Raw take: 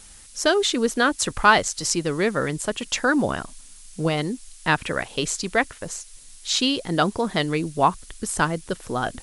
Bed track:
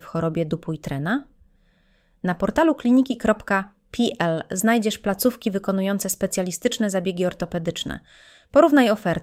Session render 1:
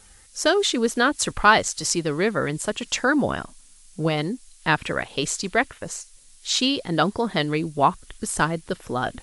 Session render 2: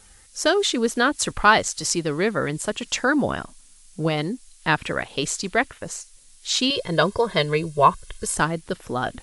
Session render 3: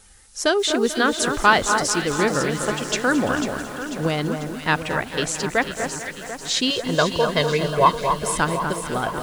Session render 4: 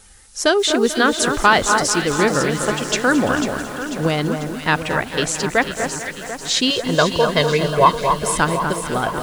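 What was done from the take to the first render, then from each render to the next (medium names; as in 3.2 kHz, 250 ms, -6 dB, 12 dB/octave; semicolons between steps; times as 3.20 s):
noise print and reduce 6 dB
6.70–8.35 s: comb 1.9 ms, depth 94%
echo whose repeats swap between lows and highs 247 ms, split 1.7 kHz, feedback 72%, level -6 dB; bit-crushed delay 220 ms, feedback 80%, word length 6-bit, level -13.5 dB
trim +3.5 dB; peak limiter -2 dBFS, peak gain reduction 3 dB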